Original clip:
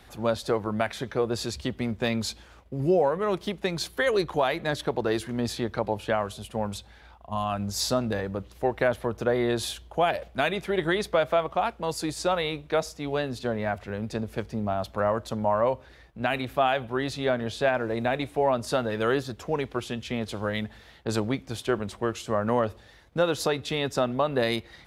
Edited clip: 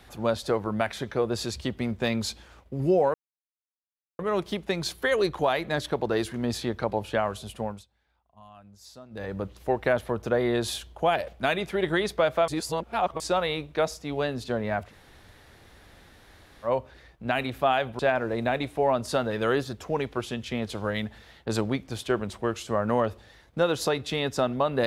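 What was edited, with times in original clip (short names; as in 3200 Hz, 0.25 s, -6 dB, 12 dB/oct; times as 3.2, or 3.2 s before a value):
3.14 insert silence 1.05 s
6.53–8.32 dip -21.5 dB, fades 0.27 s
11.43–12.15 reverse
13.84–15.62 room tone, crossfade 0.10 s
16.94–17.58 cut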